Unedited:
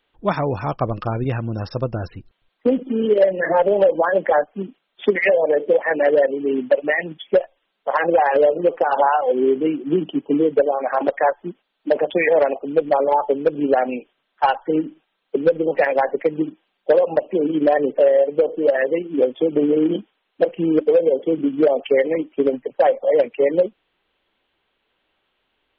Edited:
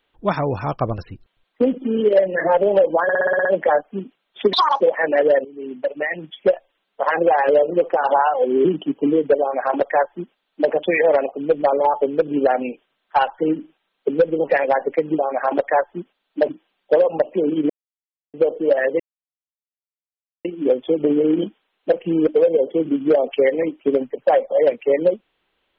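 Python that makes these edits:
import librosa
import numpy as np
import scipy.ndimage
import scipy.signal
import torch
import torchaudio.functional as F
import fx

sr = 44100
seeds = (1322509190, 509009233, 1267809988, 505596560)

y = fx.edit(x, sr, fx.cut(start_s=0.98, length_s=1.05),
    fx.stutter(start_s=4.08, slice_s=0.06, count=8),
    fx.speed_span(start_s=5.16, length_s=0.52, speed=1.88),
    fx.fade_in_from(start_s=6.32, length_s=1.04, floor_db=-17.5),
    fx.cut(start_s=9.52, length_s=0.4),
    fx.duplicate(start_s=10.68, length_s=1.3, to_s=16.46),
    fx.silence(start_s=17.67, length_s=0.64),
    fx.insert_silence(at_s=18.97, length_s=1.45), tone=tone)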